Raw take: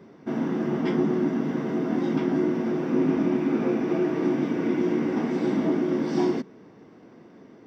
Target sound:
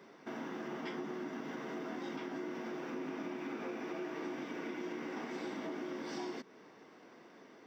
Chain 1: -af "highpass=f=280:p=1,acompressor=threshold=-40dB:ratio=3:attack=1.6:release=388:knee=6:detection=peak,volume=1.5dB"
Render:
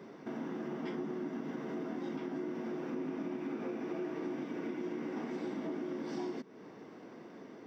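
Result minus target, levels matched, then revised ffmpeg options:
1000 Hz band -4.0 dB
-af "highpass=f=1.1k:p=1,acompressor=threshold=-40dB:ratio=3:attack=1.6:release=388:knee=6:detection=peak,volume=1.5dB"

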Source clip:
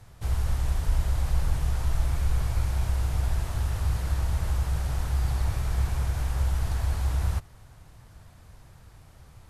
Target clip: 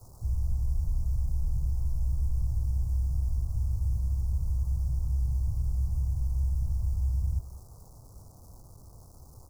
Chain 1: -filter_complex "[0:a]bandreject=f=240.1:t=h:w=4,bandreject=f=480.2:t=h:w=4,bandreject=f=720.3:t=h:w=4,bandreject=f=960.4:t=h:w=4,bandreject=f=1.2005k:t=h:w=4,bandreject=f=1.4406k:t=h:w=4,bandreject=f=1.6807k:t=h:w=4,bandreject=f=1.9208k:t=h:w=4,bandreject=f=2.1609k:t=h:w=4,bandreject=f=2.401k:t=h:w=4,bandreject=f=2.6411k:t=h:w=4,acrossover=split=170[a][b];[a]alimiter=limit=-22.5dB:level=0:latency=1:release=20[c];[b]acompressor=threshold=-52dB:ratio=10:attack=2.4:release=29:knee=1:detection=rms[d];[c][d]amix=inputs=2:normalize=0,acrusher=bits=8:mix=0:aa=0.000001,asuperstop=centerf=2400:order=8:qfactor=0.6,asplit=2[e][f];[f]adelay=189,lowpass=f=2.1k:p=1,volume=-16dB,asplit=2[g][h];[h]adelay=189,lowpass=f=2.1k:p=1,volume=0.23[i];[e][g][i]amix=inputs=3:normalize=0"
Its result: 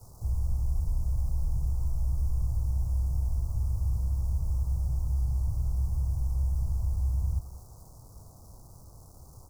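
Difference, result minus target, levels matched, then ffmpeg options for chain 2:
compressor: peak gain reduction -6.5 dB
-filter_complex "[0:a]bandreject=f=240.1:t=h:w=4,bandreject=f=480.2:t=h:w=4,bandreject=f=720.3:t=h:w=4,bandreject=f=960.4:t=h:w=4,bandreject=f=1.2005k:t=h:w=4,bandreject=f=1.4406k:t=h:w=4,bandreject=f=1.6807k:t=h:w=4,bandreject=f=1.9208k:t=h:w=4,bandreject=f=2.1609k:t=h:w=4,bandreject=f=2.401k:t=h:w=4,bandreject=f=2.6411k:t=h:w=4,acrossover=split=170[a][b];[a]alimiter=limit=-22.5dB:level=0:latency=1:release=20[c];[b]acompressor=threshold=-59dB:ratio=10:attack=2.4:release=29:knee=1:detection=rms[d];[c][d]amix=inputs=2:normalize=0,acrusher=bits=8:mix=0:aa=0.000001,asuperstop=centerf=2400:order=8:qfactor=0.6,asplit=2[e][f];[f]adelay=189,lowpass=f=2.1k:p=1,volume=-16dB,asplit=2[g][h];[h]adelay=189,lowpass=f=2.1k:p=1,volume=0.23[i];[e][g][i]amix=inputs=3:normalize=0"

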